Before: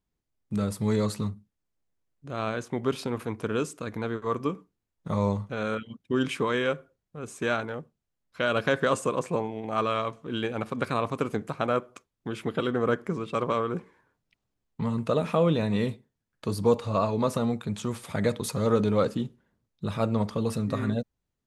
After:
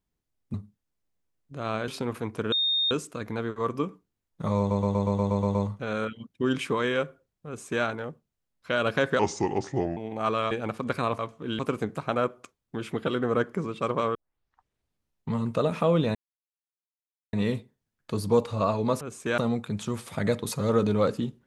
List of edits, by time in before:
0.54–1.27 s: delete
2.61–2.93 s: delete
3.57 s: add tone 3.68 kHz -22 dBFS 0.39 s
5.25 s: stutter 0.12 s, 9 plays
7.17–7.54 s: copy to 17.35 s
8.89–9.49 s: speed 77%
10.03–10.43 s: move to 11.11 s
13.67 s: tape start 1.15 s
15.67 s: insert silence 1.18 s

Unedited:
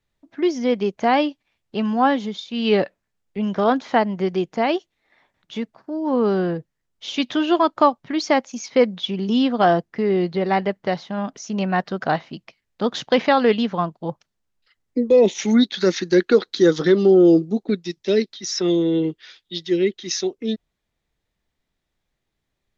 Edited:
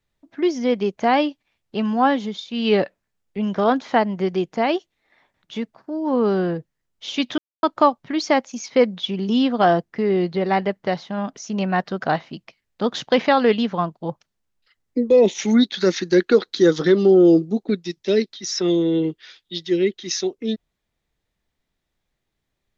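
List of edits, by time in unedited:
7.38–7.63 s: mute

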